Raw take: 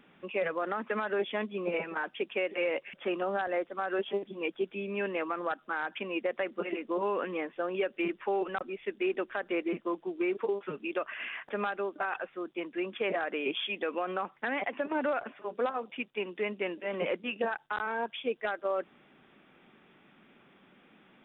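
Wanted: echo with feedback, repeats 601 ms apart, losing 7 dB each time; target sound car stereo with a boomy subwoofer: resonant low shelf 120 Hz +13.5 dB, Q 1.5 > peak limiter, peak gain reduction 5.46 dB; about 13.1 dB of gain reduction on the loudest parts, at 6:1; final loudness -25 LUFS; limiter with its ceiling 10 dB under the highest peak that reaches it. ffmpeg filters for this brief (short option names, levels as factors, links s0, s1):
-af "acompressor=threshold=0.00891:ratio=6,alimiter=level_in=4.73:limit=0.0631:level=0:latency=1,volume=0.211,lowshelf=f=120:t=q:w=1.5:g=13.5,aecho=1:1:601|1202|1803|2404|3005:0.447|0.201|0.0905|0.0407|0.0183,volume=15.8,alimiter=limit=0.168:level=0:latency=1"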